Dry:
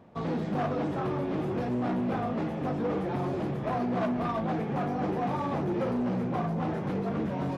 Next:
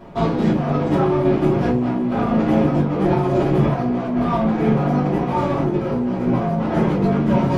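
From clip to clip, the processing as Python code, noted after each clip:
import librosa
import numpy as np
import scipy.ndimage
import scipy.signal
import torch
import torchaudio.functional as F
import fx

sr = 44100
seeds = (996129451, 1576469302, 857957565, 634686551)

y = fx.over_compress(x, sr, threshold_db=-32.0, ratio=-0.5)
y = fx.room_shoebox(y, sr, seeds[0], volume_m3=120.0, walls='furnished', distance_m=2.9)
y = y * librosa.db_to_amplitude(6.0)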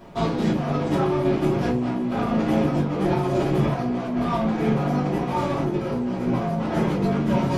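y = fx.high_shelf(x, sr, hz=3300.0, db=10.0)
y = y * librosa.db_to_amplitude(-4.5)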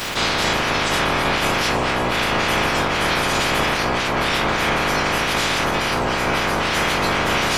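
y = fx.spec_clip(x, sr, under_db=30)
y = fx.env_flatten(y, sr, amount_pct=70)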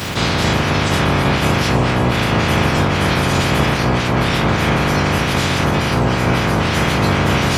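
y = scipy.signal.sosfilt(scipy.signal.butter(2, 60.0, 'highpass', fs=sr, output='sos'), x)
y = fx.peak_eq(y, sr, hz=99.0, db=14.5, octaves=2.8)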